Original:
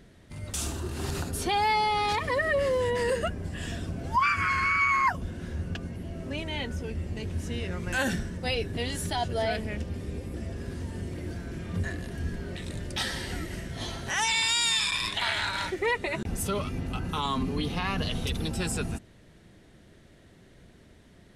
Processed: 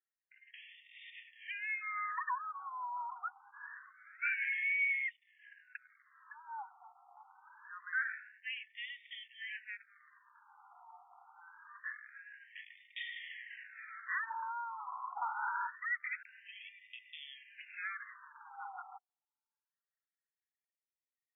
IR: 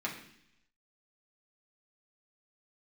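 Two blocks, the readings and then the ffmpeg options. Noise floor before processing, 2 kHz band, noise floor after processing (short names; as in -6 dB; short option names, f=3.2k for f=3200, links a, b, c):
-55 dBFS, -7.5 dB, under -85 dBFS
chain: -filter_complex "[0:a]acrossover=split=2600[a][b];[b]acompressor=threshold=-38dB:ratio=4:attack=1:release=60[c];[a][c]amix=inputs=2:normalize=0,anlmdn=0.1,asplit=2[d][e];[e]acompressor=threshold=-40dB:ratio=6,volume=-1.5dB[f];[d][f]amix=inputs=2:normalize=0,highpass=f=330:w=0.5412,highpass=f=330:w=1.3066,equalizer=f=510:t=q:w=4:g=5,equalizer=f=800:t=q:w=4:g=4,equalizer=f=2.9k:t=q:w=4:g=-4,lowpass=f=3.6k:w=0.5412,lowpass=f=3.6k:w=1.3066,afftfilt=real='re*between(b*sr/1024,990*pow(2600/990,0.5+0.5*sin(2*PI*0.25*pts/sr))/1.41,990*pow(2600/990,0.5+0.5*sin(2*PI*0.25*pts/sr))*1.41)':imag='im*between(b*sr/1024,990*pow(2600/990,0.5+0.5*sin(2*PI*0.25*pts/sr))/1.41,990*pow(2600/990,0.5+0.5*sin(2*PI*0.25*pts/sr))*1.41)':win_size=1024:overlap=0.75,volume=-5dB"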